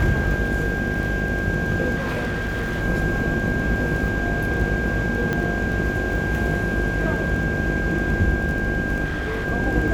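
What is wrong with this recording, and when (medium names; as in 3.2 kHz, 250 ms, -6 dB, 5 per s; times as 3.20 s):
buzz 50 Hz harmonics 16 -27 dBFS
crackle 18 per s -28 dBFS
whine 1.6 kHz -26 dBFS
1.95–2.83 s: clipped -21.5 dBFS
5.33 s: pop -11 dBFS
9.04–9.46 s: clipped -22.5 dBFS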